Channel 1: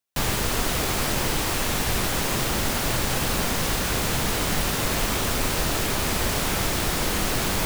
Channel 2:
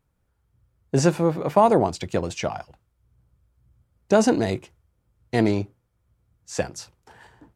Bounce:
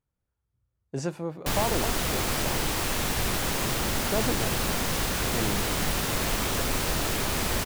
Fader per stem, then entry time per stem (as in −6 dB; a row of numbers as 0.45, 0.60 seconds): −3.0, −12.0 decibels; 1.30, 0.00 seconds